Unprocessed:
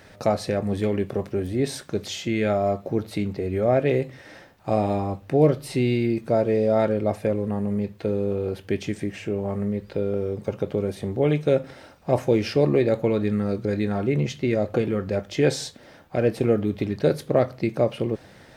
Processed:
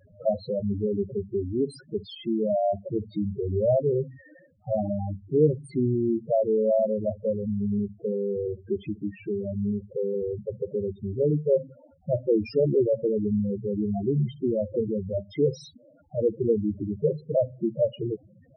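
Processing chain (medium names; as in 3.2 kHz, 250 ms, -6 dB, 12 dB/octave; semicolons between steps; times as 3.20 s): 3.31–3.75 s: bass shelf 230 Hz +3 dB; loudest bins only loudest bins 4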